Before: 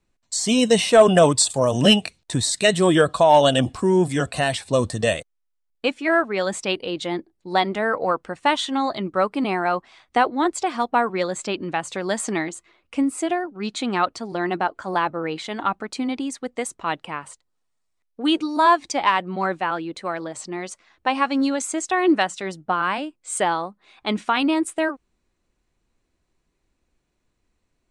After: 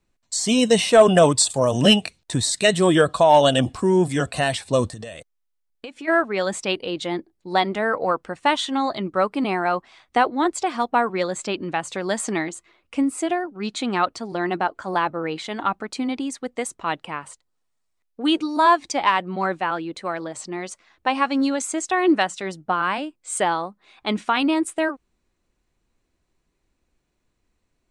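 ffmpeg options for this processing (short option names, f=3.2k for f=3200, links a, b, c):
-filter_complex "[0:a]asplit=3[a][b][c];[a]afade=t=out:st=4.88:d=0.02[d];[b]acompressor=threshold=-31dB:ratio=16:attack=3.2:release=140:knee=1:detection=peak,afade=t=in:st=4.88:d=0.02,afade=t=out:st=6.07:d=0.02[e];[c]afade=t=in:st=6.07:d=0.02[f];[d][e][f]amix=inputs=3:normalize=0"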